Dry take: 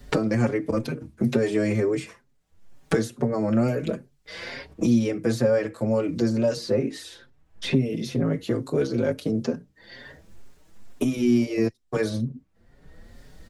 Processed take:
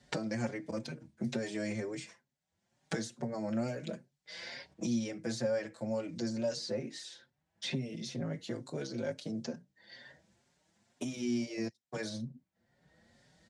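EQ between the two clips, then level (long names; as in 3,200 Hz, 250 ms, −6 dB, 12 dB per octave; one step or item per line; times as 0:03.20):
dynamic equaliser 5,900 Hz, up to +5 dB, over −51 dBFS, Q 0.86
loudspeaker in its box 160–8,700 Hz, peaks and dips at 280 Hz −8 dB, 430 Hz −10 dB, 1,200 Hz −8 dB, 2,600 Hz −3 dB
−8.5 dB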